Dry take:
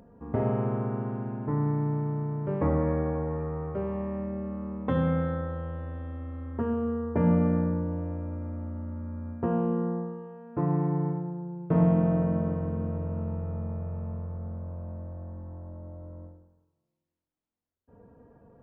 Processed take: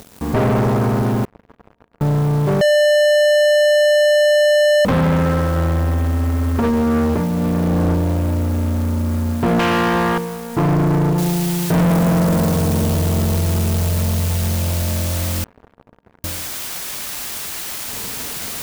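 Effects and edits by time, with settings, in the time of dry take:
0:01.25–0:02.01: fill with room tone
0:02.61–0:04.85: beep over 595 Hz −13 dBFS
0:05.56–0:07.94: compressor whose output falls as the input rises −30 dBFS
0:09.59–0:10.18: every bin compressed towards the loudest bin 4 to 1
0:11.18: noise floor change −59 dB −45 dB
0:15.44–0:16.24: fill with room tone
whole clip: notch filter 490 Hz, Q 13; leveller curve on the samples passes 5

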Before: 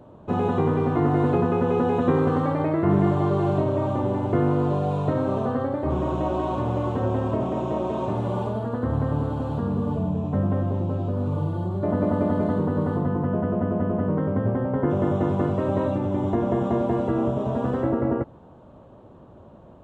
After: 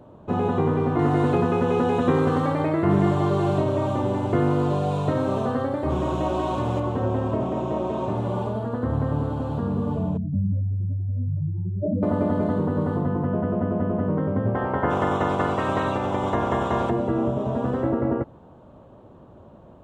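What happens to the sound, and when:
0:00.99–0:06.80: high-shelf EQ 2,500 Hz +9.5 dB
0:10.17–0:12.03: expanding power law on the bin magnitudes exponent 3.5
0:14.54–0:16.89: ceiling on every frequency bin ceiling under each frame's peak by 19 dB

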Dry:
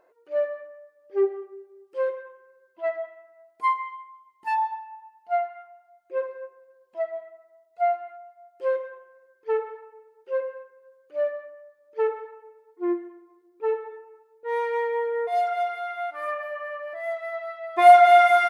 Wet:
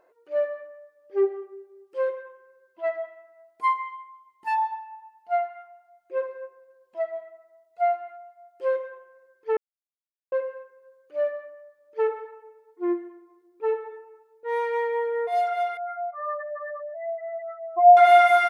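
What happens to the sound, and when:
0:09.57–0:10.32: silence
0:15.77–0:17.97: expanding power law on the bin magnitudes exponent 3.4

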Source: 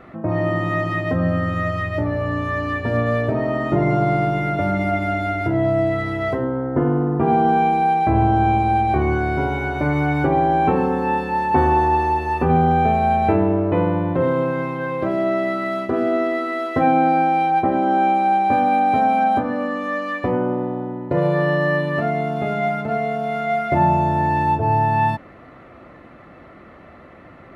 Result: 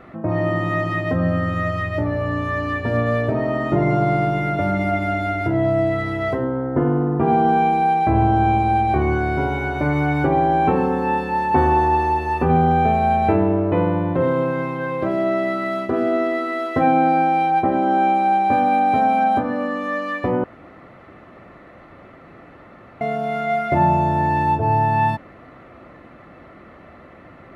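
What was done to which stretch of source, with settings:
0:20.44–0:23.01: fill with room tone

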